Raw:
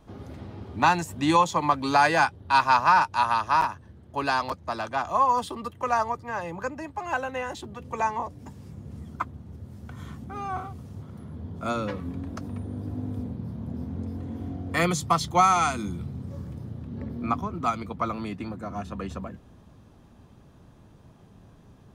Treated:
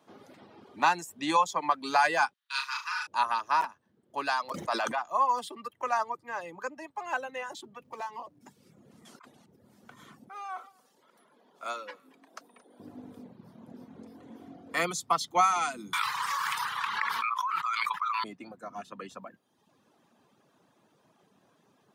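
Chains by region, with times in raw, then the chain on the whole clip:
2.33–3.07 Bessel high-pass 2200 Hz, order 6 + flutter echo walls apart 6.2 m, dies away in 0.59 s
4.54–4.99 low shelf 110 Hz -9.5 dB + fast leveller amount 100%
7.84–8.41 median filter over 15 samples + compressor 2:1, threshold -34 dBFS
9.05–9.46 LPF 9400 Hz + tilt +3 dB/oct + negative-ratio compressor -42 dBFS
10.29–12.8 Bessel high-pass 670 Hz + echo 0.226 s -17.5 dB
15.93–18.24 elliptic high-pass 1000 Hz + high shelf 2900 Hz -9 dB + fast leveller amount 100%
whole clip: Bessel high-pass 230 Hz, order 4; reverb removal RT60 0.88 s; low shelf 350 Hz -7.5 dB; gain -2.5 dB

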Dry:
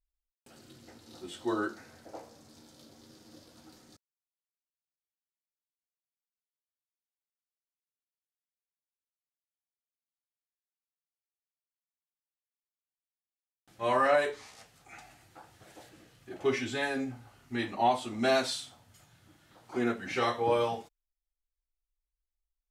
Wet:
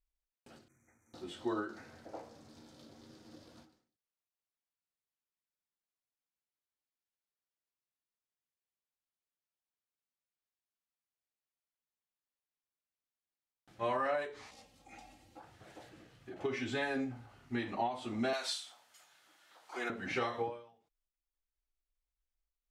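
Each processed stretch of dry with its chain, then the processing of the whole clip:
0.68–1.14 brick-wall FIR band-stop 2500–5700 Hz + passive tone stack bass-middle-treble 5-5-5
14.51–15.4 bell 1500 Hz -13 dB 0.98 oct + comb 3.7 ms, depth 68%
18.33–19.9 HPF 700 Hz + high shelf 4400 Hz +8 dB
whole clip: high shelf 6400 Hz -12 dB; compressor 5:1, threshold -31 dBFS; ending taper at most 110 dB/s

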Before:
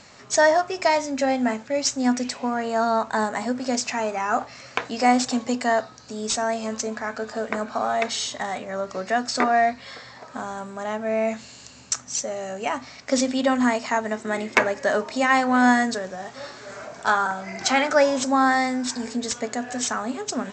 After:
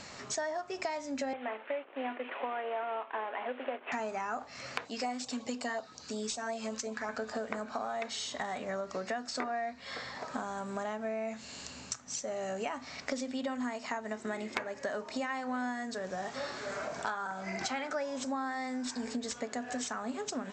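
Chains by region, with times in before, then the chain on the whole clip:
1.33–3.92 CVSD 16 kbps + HPF 370 Hz 24 dB/oct
4.85–7.09 LFO notch sine 5.5 Hz 600–1900 Hz + low shelf 490 Hz -5.5 dB
whole clip: compressor 10:1, threshold -34 dBFS; dynamic EQ 6500 Hz, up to -3 dB, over -51 dBFS, Q 1.1; notches 60/120 Hz; gain +1 dB

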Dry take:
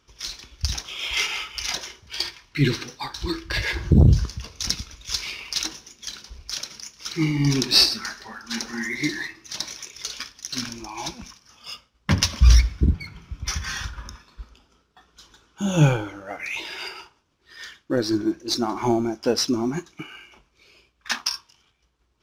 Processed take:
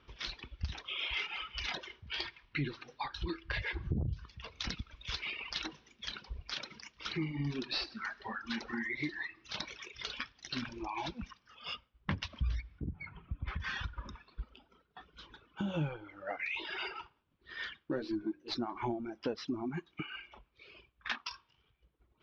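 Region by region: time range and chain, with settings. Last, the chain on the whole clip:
12.79–13.6 air absorption 420 m + compressor 3:1, threshold -24 dBFS
17.8–18.52 switching dead time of 0.053 ms + notches 60/120/180/240/300/360/420/480/540 Hz + doubler 13 ms -4 dB
whole clip: reverb removal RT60 1 s; LPF 3600 Hz 24 dB/oct; compressor 4:1, threshold -37 dBFS; gain +1 dB

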